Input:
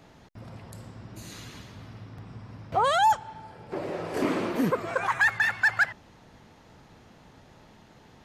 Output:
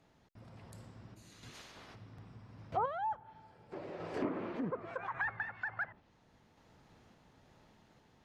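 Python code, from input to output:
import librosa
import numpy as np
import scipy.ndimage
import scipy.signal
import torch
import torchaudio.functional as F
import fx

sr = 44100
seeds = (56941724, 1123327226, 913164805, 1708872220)

y = fx.spec_clip(x, sr, under_db=21, at=(1.53, 1.94), fade=0.02)
y = fx.env_lowpass_down(y, sr, base_hz=1300.0, full_db=-22.0)
y = fx.tremolo_random(y, sr, seeds[0], hz=3.5, depth_pct=55)
y = F.gain(torch.from_numpy(y), -8.5).numpy()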